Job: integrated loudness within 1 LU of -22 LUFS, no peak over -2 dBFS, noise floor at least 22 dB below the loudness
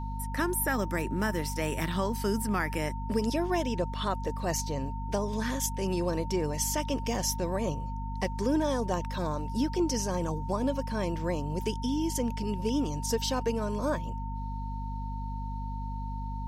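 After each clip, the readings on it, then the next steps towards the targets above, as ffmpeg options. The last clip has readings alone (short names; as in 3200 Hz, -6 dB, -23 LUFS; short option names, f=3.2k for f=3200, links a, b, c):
hum 50 Hz; harmonics up to 250 Hz; hum level -33 dBFS; steady tone 910 Hz; tone level -40 dBFS; loudness -31.0 LUFS; peak -15.5 dBFS; loudness target -22.0 LUFS
-> -af "bandreject=f=50:t=h:w=4,bandreject=f=100:t=h:w=4,bandreject=f=150:t=h:w=4,bandreject=f=200:t=h:w=4,bandreject=f=250:t=h:w=4"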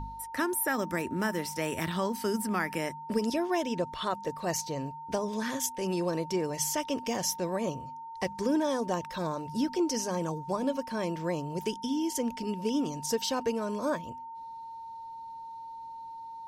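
hum none; steady tone 910 Hz; tone level -40 dBFS
-> -af "bandreject=f=910:w=30"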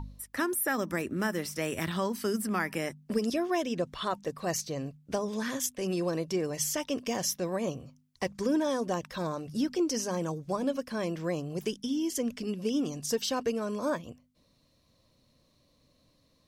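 steady tone none; loudness -32.0 LUFS; peak -16.0 dBFS; loudness target -22.0 LUFS
-> -af "volume=10dB"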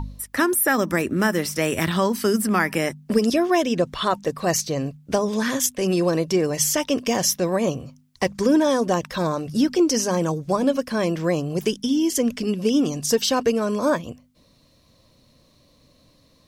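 loudness -22.0 LUFS; peak -6.0 dBFS; noise floor -58 dBFS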